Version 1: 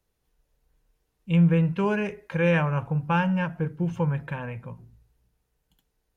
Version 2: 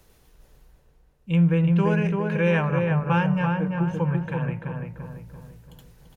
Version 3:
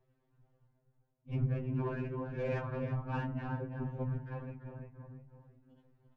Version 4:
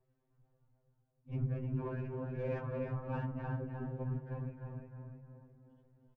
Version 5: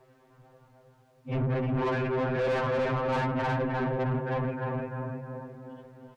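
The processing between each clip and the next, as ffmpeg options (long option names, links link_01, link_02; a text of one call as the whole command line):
ffmpeg -i in.wav -filter_complex "[0:a]areverse,acompressor=mode=upward:threshold=-39dB:ratio=2.5,areverse,asplit=2[link_01][link_02];[link_02]adelay=339,lowpass=frequency=1900:poles=1,volume=-3dB,asplit=2[link_03][link_04];[link_04]adelay=339,lowpass=frequency=1900:poles=1,volume=0.48,asplit=2[link_05][link_06];[link_06]adelay=339,lowpass=frequency=1900:poles=1,volume=0.48,asplit=2[link_07][link_08];[link_08]adelay=339,lowpass=frequency=1900:poles=1,volume=0.48,asplit=2[link_09][link_10];[link_10]adelay=339,lowpass=frequency=1900:poles=1,volume=0.48,asplit=2[link_11][link_12];[link_12]adelay=339,lowpass=frequency=1900:poles=1,volume=0.48[link_13];[link_01][link_03][link_05][link_07][link_09][link_11][link_13]amix=inputs=7:normalize=0" out.wav
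ffmpeg -i in.wav -af "afftfilt=real='hypot(re,im)*cos(2*PI*random(0))':imag='hypot(re,im)*sin(2*PI*random(1))':win_size=512:overlap=0.75,adynamicsmooth=sensitivity=1.5:basefreq=1700,afftfilt=real='re*2.45*eq(mod(b,6),0)':imag='im*2.45*eq(mod(b,6),0)':win_size=2048:overlap=0.75,volume=-5.5dB" out.wav
ffmpeg -i in.wav -filter_complex "[0:a]highshelf=frequency=2400:gain=-8.5,asplit=2[link_01][link_02];[link_02]adelay=304,lowpass=frequency=2700:poles=1,volume=-5.5dB,asplit=2[link_03][link_04];[link_04]adelay=304,lowpass=frequency=2700:poles=1,volume=0.36,asplit=2[link_05][link_06];[link_06]adelay=304,lowpass=frequency=2700:poles=1,volume=0.36,asplit=2[link_07][link_08];[link_08]adelay=304,lowpass=frequency=2700:poles=1,volume=0.36[link_09];[link_01][link_03][link_05][link_07][link_09]amix=inputs=5:normalize=0,volume=-3dB" out.wav
ffmpeg -i in.wav -filter_complex "[0:a]asplit=2[link_01][link_02];[link_02]highpass=frequency=720:poles=1,volume=29dB,asoftclip=type=tanh:threshold=-25dB[link_03];[link_01][link_03]amix=inputs=2:normalize=0,lowpass=frequency=2200:poles=1,volume=-6dB,volume=4.5dB" out.wav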